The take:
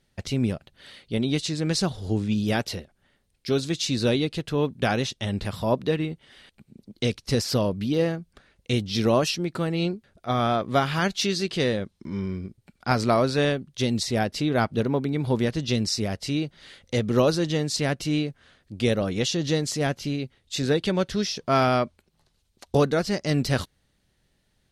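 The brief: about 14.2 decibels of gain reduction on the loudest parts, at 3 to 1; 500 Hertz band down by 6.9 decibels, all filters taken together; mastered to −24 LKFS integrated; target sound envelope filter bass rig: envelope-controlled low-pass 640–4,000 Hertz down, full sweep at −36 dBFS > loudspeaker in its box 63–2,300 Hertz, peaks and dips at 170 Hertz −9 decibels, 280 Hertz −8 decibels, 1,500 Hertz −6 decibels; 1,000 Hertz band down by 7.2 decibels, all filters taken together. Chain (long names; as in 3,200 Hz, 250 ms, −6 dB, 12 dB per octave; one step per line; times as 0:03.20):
parametric band 500 Hz −6 dB
parametric band 1,000 Hz −6.5 dB
downward compressor 3 to 1, threshold −40 dBFS
envelope-controlled low-pass 640–4,000 Hz down, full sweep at −36 dBFS
loudspeaker in its box 63–2,300 Hz, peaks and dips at 170 Hz −9 dB, 280 Hz −8 dB, 1,500 Hz −6 dB
level +16.5 dB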